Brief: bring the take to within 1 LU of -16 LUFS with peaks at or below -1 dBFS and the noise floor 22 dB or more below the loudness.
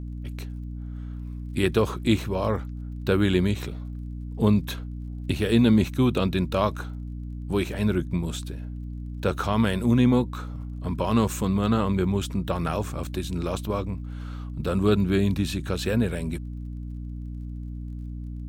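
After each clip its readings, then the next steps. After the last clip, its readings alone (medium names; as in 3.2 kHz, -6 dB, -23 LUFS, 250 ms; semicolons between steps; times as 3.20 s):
tick rate 30 per s; hum 60 Hz; highest harmonic 300 Hz; hum level -32 dBFS; loudness -25.5 LUFS; peak level -7.0 dBFS; loudness target -16.0 LUFS
-> de-click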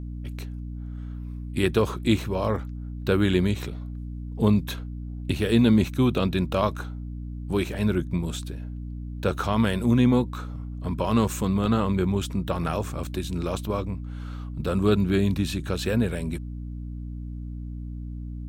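tick rate 0 per s; hum 60 Hz; highest harmonic 300 Hz; hum level -32 dBFS
-> hum notches 60/120/180/240/300 Hz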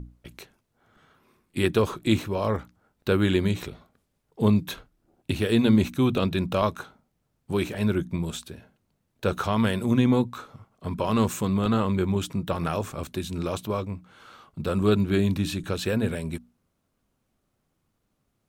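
hum not found; loudness -25.5 LUFS; peak level -8.0 dBFS; loudness target -16.0 LUFS
-> trim +9.5 dB; peak limiter -1 dBFS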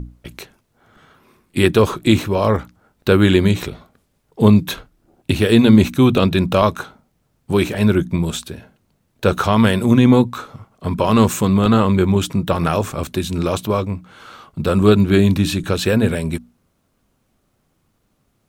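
loudness -16.5 LUFS; peak level -1.0 dBFS; noise floor -66 dBFS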